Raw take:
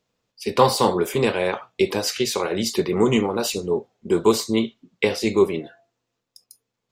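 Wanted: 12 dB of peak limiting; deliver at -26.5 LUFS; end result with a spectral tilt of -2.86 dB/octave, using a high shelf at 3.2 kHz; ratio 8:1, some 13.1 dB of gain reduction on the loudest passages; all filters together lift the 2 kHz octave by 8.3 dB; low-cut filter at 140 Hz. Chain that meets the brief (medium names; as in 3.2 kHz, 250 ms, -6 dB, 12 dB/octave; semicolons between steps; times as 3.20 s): high-pass 140 Hz; peaking EQ 2 kHz +8.5 dB; treble shelf 3.2 kHz +4.5 dB; compression 8:1, threshold -23 dBFS; trim +3 dB; peak limiter -15 dBFS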